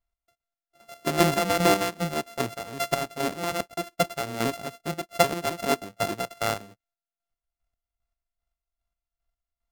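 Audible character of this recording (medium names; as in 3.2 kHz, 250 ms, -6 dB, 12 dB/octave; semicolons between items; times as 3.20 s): a buzz of ramps at a fixed pitch in blocks of 64 samples; chopped level 2.5 Hz, depth 60%, duty 35%; AAC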